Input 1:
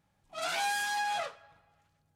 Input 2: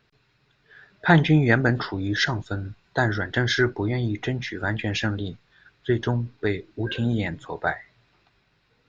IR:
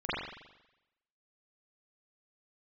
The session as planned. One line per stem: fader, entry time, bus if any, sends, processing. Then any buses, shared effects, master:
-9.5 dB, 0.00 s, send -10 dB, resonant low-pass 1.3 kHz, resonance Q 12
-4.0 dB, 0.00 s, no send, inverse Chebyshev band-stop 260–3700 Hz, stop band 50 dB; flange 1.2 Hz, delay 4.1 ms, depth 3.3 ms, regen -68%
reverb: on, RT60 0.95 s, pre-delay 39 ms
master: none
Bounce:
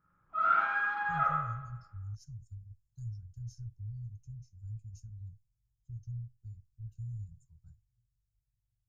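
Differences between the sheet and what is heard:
stem 1: send -10 dB -> -2 dB; master: extra peaking EQ 750 Hz -11 dB 0.72 oct

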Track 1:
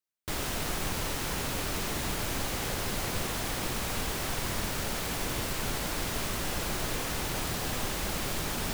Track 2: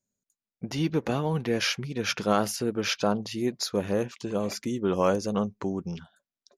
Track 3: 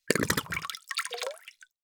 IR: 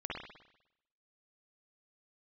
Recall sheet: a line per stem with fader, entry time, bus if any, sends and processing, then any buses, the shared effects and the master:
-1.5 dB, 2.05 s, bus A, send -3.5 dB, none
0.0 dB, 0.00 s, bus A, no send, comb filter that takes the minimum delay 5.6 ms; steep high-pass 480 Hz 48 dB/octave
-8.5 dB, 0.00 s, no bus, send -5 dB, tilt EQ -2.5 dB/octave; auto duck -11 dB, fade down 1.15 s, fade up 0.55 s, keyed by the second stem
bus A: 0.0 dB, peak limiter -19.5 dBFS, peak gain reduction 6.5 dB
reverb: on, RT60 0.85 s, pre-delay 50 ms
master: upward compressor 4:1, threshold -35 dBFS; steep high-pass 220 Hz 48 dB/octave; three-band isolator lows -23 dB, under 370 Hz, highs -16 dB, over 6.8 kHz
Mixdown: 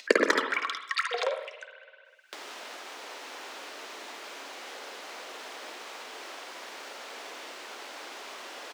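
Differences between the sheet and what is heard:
stem 1 -1.5 dB -> -10.5 dB; stem 2: muted; stem 3 -8.5 dB -> +3.5 dB

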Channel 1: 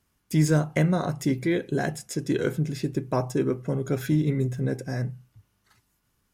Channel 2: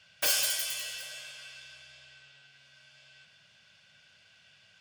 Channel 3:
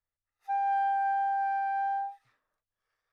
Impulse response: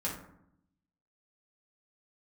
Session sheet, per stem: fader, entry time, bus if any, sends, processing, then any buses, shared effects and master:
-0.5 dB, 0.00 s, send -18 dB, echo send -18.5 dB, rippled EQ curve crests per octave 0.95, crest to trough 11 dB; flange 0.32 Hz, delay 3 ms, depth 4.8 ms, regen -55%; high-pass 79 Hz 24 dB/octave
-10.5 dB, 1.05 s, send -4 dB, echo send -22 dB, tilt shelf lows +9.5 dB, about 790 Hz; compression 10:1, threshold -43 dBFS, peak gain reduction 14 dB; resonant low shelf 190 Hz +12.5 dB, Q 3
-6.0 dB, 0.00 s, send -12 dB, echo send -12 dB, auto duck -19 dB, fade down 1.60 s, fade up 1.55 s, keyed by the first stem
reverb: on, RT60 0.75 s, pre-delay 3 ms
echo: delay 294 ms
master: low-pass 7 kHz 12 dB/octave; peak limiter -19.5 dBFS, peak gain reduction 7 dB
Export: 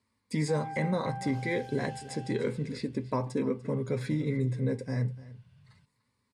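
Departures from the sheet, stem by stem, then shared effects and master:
stem 1: send off; reverb return -9.0 dB

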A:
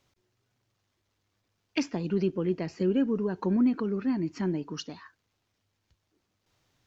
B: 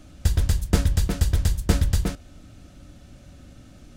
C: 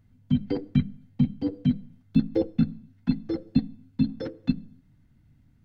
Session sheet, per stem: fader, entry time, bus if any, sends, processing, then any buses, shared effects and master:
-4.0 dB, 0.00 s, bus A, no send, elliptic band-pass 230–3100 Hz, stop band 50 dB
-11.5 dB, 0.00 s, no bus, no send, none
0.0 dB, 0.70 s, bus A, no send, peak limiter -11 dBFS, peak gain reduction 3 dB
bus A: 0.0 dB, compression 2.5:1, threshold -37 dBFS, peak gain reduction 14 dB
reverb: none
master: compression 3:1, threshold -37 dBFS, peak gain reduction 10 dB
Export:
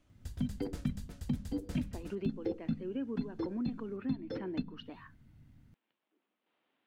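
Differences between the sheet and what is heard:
stem B -11.5 dB -> -23.5 dB; stem C: entry 0.70 s -> 0.10 s; master: missing compression 3:1, threshold -37 dBFS, peak gain reduction 10 dB

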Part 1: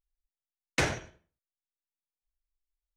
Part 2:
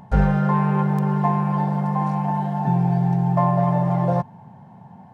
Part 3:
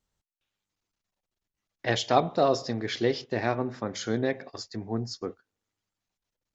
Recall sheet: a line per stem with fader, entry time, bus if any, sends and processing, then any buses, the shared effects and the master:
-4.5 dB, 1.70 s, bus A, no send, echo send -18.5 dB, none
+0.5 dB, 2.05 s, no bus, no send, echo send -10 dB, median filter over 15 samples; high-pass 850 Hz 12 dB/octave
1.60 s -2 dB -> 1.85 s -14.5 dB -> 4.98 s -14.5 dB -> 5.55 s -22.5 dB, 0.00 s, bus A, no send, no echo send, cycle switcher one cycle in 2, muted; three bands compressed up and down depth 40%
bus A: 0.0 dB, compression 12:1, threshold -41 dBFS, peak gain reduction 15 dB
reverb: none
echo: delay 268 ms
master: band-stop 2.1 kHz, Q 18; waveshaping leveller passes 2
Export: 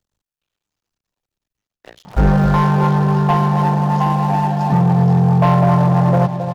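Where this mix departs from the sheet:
stem 1: muted; stem 2: missing high-pass 850 Hz 12 dB/octave

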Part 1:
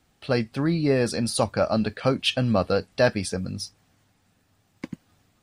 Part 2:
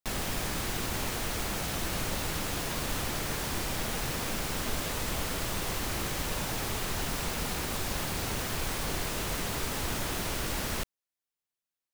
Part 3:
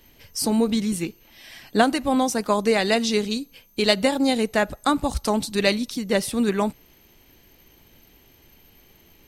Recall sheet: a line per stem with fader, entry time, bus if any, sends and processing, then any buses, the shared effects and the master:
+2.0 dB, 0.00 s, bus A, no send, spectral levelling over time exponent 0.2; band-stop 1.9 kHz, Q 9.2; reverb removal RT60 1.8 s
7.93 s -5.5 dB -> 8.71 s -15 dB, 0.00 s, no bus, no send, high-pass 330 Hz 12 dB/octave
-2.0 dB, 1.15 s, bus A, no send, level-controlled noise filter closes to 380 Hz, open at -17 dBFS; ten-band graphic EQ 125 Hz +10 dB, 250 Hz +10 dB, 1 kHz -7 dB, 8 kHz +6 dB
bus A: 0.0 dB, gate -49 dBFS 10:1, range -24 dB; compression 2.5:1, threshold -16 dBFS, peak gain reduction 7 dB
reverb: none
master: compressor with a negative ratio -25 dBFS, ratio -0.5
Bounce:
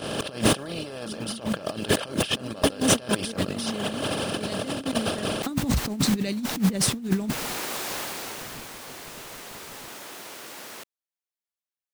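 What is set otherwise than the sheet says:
stem 1 +2.0 dB -> +11.0 dB; stem 3: entry 1.15 s -> 0.60 s

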